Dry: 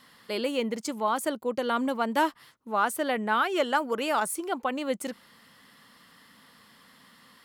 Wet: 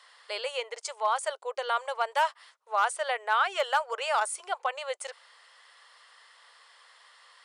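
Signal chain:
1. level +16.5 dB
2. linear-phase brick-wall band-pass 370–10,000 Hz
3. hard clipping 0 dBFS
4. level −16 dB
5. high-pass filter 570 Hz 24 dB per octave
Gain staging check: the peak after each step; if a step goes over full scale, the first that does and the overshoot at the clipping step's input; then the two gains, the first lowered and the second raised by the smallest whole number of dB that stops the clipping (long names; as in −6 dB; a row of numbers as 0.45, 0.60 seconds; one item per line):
+4.0, +4.5, 0.0, −16.0, −13.5 dBFS
step 1, 4.5 dB
step 1 +11.5 dB, step 4 −11 dB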